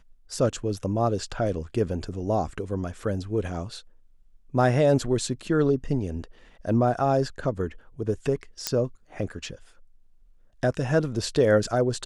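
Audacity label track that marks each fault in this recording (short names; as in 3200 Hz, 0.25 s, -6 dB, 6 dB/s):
8.670000	8.670000	pop -8 dBFS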